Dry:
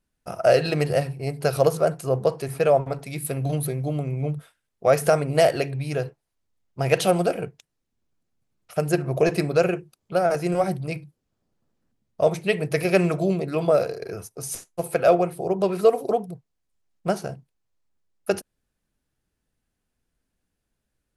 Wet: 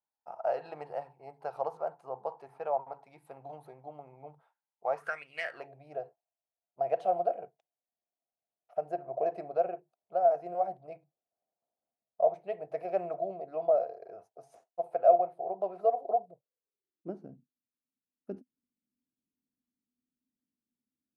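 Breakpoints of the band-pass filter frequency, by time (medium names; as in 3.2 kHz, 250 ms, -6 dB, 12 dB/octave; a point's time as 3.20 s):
band-pass filter, Q 7
4.95 s 860 Hz
5.29 s 3.3 kHz
5.70 s 690 Hz
16.19 s 690 Hz
17.31 s 250 Hz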